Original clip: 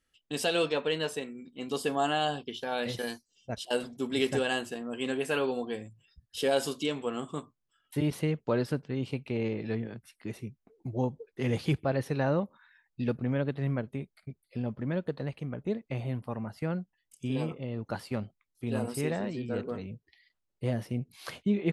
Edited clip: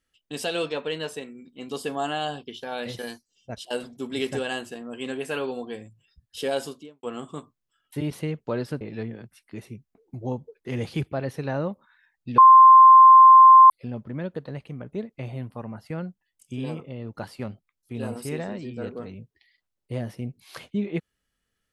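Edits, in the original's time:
0:06.53–0:07.03: fade out and dull
0:08.81–0:09.53: remove
0:13.10–0:14.42: beep over 1,050 Hz −7 dBFS

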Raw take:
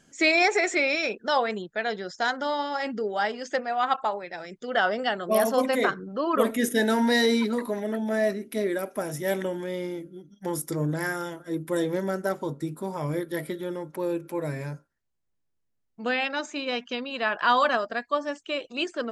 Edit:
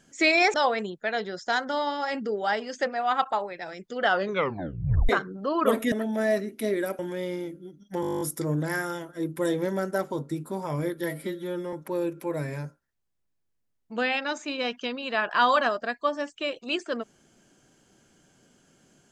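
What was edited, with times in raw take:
0:00.54–0:01.26: remove
0:04.85: tape stop 0.96 s
0:06.64–0:07.85: remove
0:08.92–0:09.50: remove
0:10.52: stutter 0.02 s, 11 plays
0:13.35–0:13.81: time-stretch 1.5×

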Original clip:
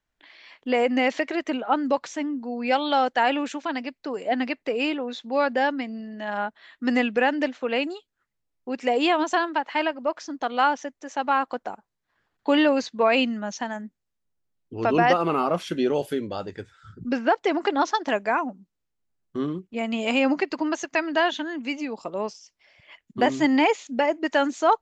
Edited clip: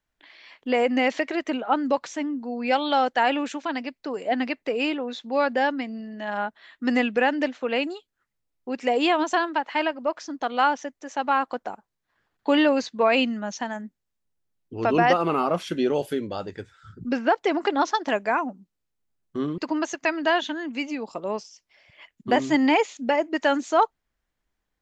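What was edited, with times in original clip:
0:19.58–0:20.48: remove

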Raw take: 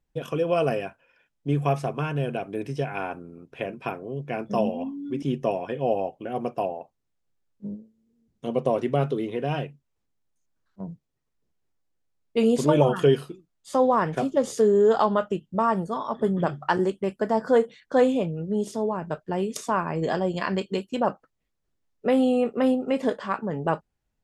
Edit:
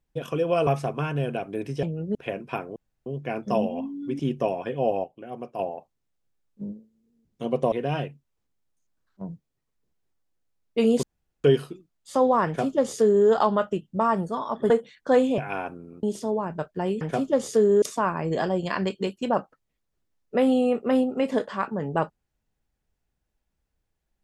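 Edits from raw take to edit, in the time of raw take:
0:00.67–0:01.67: remove
0:02.83–0:03.48: swap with 0:18.23–0:18.55
0:04.09: splice in room tone 0.30 s
0:06.07–0:06.62: clip gain −7.5 dB
0:08.75–0:09.31: remove
0:12.62–0:13.03: fill with room tone
0:14.05–0:14.86: duplicate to 0:19.53
0:16.29–0:17.55: remove

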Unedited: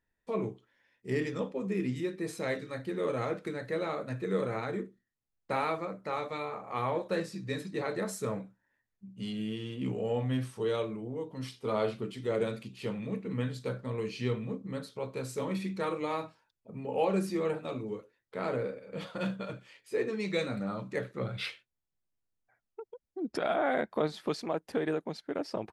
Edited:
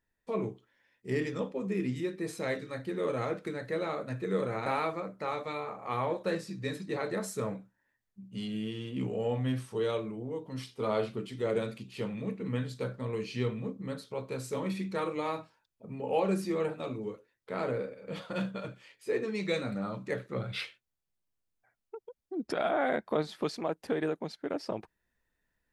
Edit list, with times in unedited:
0:04.66–0:05.51: remove

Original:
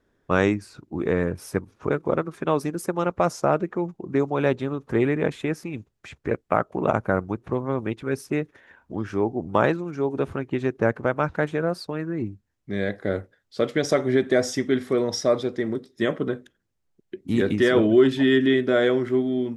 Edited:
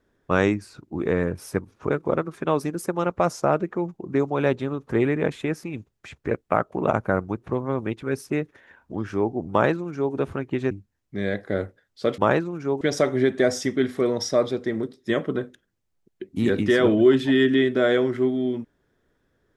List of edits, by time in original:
0:09.51–0:10.14: duplicate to 0:13.73
0:10.71–0:12.26: remove

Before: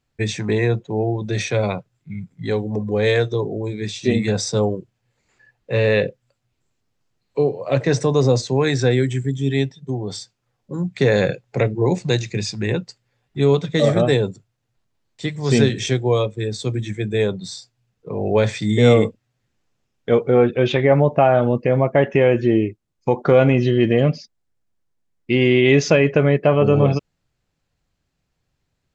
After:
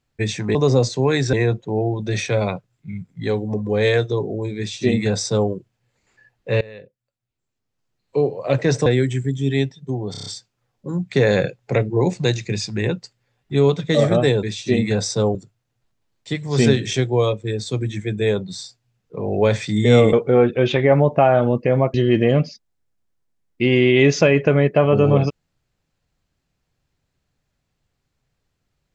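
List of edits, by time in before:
0:03.80–0:04.72: duplicate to 0:14.28
0:05.83–0:07.46: fade in quadratic, from −22.5 dB
0:08.08–0:08.86: move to 0:00.55
0:10.11: stutter 0.03 s, 6 plays
0:19.06–0:20.13: remove
0:21.94–0:23.63: remove

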